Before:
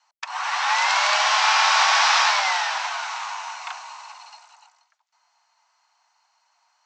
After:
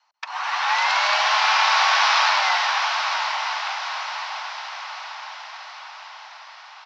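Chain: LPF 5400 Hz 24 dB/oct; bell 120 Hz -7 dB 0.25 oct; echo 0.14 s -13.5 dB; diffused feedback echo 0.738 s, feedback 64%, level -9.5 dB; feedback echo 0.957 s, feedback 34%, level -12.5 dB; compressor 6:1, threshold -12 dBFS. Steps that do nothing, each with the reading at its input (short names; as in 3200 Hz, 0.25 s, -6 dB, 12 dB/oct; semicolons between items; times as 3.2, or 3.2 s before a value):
bell 120 Hz: input band starts at 510 Hz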